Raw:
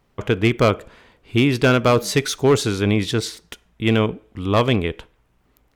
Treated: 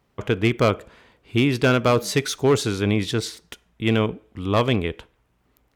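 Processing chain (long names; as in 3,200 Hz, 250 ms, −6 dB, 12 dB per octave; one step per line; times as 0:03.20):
high-pass filter 41 Hz
level −2.5 dB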